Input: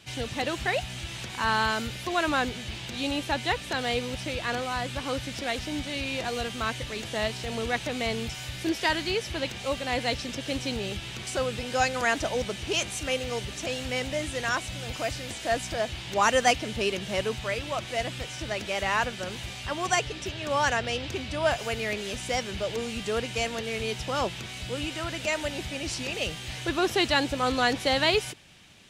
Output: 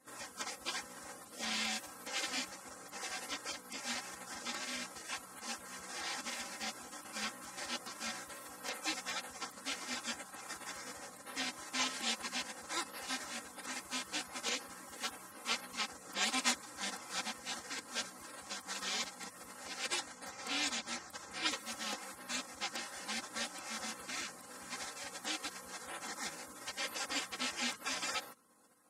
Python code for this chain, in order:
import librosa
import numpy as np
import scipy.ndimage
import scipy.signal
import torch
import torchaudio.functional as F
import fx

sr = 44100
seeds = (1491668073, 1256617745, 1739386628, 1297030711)

y = scipy.signal.sosfilt(scipy.signal.butter(2, 490.0, 'highpass', fs=sr, output='sos'), x)
y = fx.peak_eq(y, sr, hz=5400.0, db=9.5, octaves=2.3)
y = fx.spec_gate(y, sr, threshold_db=-20, keep='weak')
y = fx.high_shelf(y, sr, hz=3500.0, db=-10.5)
y = y + 0.63 * np.pad(y, (int(3.8 * sr / 1000.0), 0))[:len(y)]
y = y * 10.0 ** (2.0 / 20.0)